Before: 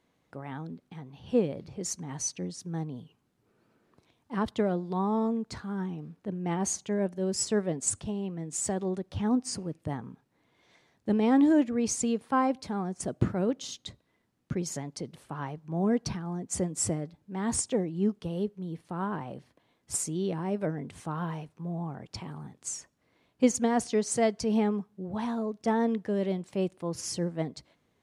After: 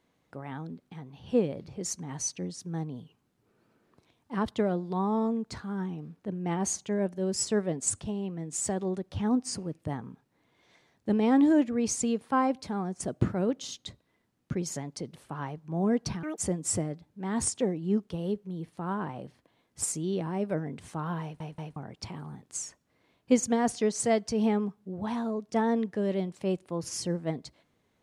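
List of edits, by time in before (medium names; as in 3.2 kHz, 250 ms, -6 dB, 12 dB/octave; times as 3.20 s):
16.23–16.50 s: speed 177%
21.34 s: stutter in place 0.18 s, 3 plays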